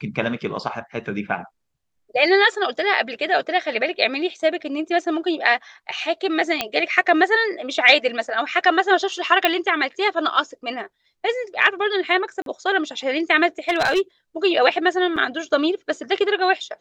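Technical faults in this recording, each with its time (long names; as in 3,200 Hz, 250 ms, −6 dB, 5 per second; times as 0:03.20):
0:06.61: click −5 dBFS
0:09.45: click −3 dBFS
0:12.42–0:12.46: drop-out 42 ms
0:13.69–0:14.01: clipping −14 dBFS
0:15.16–0:15.17: drop-out 6 ms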